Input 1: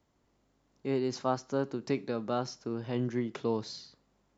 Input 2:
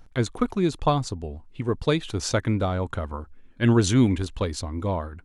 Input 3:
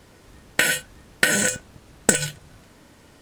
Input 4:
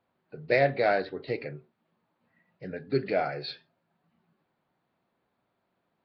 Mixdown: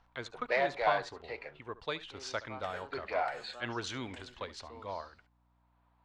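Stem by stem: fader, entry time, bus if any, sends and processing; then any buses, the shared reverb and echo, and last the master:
-13.0 dB, 1.25 s, no send, no echo send, dry
-8.0 dB, 0.00 s, no send, echo send -17.5 dB, dry
-19.0 dB, 2.05 s, no send, no echo send, compressor, threshold -28 dBFS, peak gain reduction 16 dB
+2.0 dB, 0.00 s, no send, no echo send, bell 960 Hz +12 dB 0.56 oct; sample leveller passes 1; auto duck -10 dB, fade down 0.65 s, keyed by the second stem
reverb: off
echo: echo 71 ms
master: three-band isolator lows -18 dB, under 560 Hz, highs -23 dB, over 5400 Hz; hum 60 Hz, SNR 34 dB

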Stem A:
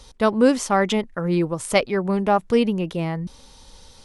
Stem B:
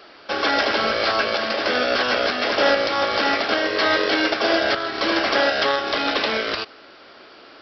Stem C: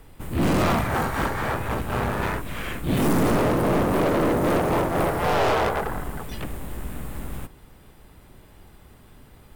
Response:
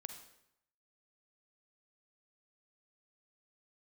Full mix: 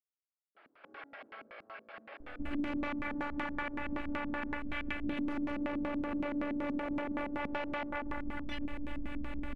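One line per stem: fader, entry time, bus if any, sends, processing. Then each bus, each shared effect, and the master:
off
-18.0 dB, 0.55 s, send -5 dB, compressor, threshold -24 dBFS, peak gain reduction 10.5 dB; limiter -23 dBFS, peak gain reduction 10 dB; band-pass 1000 Hz, Q 0.73
0.0 dB, 2.20 s, no send, tone controls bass -1 dB, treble +3 dB; limiter -19 dBFS, peak gain reduction 5 dB; robotiser 291 Hz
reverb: on, RT60 0.80 s, pre-delay 38 ms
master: LFO low-pass square 5.3 Hz 250–2400 Hz; compressor, threshold -32 dBFS, peak gain reduction 12 dB

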